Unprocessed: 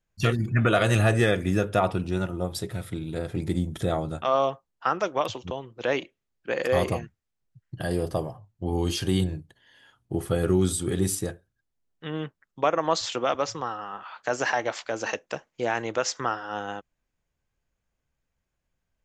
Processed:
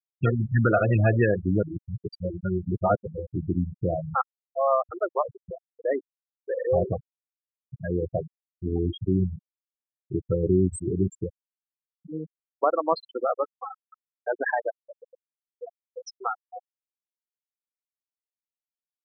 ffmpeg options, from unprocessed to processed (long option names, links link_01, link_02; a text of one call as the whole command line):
ffmpeg -i in.wav -filter_complex "[0:a]asettb=1/sr,asplit=3[link_01][link_02][link_03];[link_01]atrim=end=14.744[link_04];[link_02]atrim=start=14.74:end=16.04,asetpts=PTS-STARTPTS,afade=type=in:duration=0.004:curve=qsin,afade=type=out:start_time=1.296:duration=0.004:curve=qsin,acompressor=threshold=-33dB:ratio=2.5:attack=3.2:release=140:knee=1:detection=peak[link_05];[link_03]atrim=start=16.036[link_06];[link_04][link_05]acrossfade=duration=0.004:curve1=hsin:curve2=qsin[link_07];[link_07][link_06]acrossfade=duration=0.004:curve1=qsin:curve2=hsin,asplit=5[link_08][link_09][link_10][link_11][link_12];[link_08]atrim=end=1.632[link_13];[link_09]atrim=start=1.628:end=3.072,asetpts=PTS-STARTPTS,areverse[link_14];[link_10]atrim=start=3.068:end=4.152[link_15];[link_11]atrim=start=4.148:end=4.922,asetpts=PTS-STARTPTS,areverse[link_16];[link_12]atrim=start=4.918[link_17];[link_13][link_14]acrossfade=duration=0.004:curve1=hsin:curve2=hsin[link_18];[link_18][link_15]acrossfade=duration=0.004:curve1=hsin:curve2=hsin[link_19];[link_19][link_16]acrossfade=duration=0.004:curve1=hsin:curve2=hsin[link_20];[link_20][link_17]acrossfade=duration=0.004:curve1=hsin:curve2=hsin,afftfilt=real='re*gte(hypot(re,im),0.178)':imag='im*gte(hypot(re,im),0.178)':win_size=1024:overlap=0.75,volume=1dB" out.wav